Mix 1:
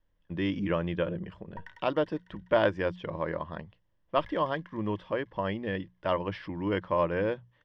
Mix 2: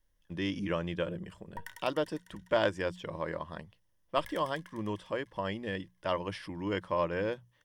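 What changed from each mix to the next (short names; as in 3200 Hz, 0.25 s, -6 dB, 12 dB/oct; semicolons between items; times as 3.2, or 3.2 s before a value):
speech -4.5 dB; master: remove air absorption 260 m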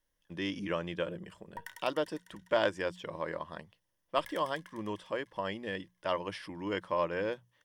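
master: add low shelf 140 Hz -11 dB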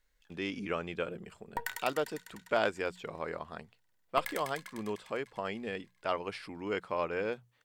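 background +10.5 dB; master: remove ripple EQ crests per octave 1.2, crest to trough 8 dB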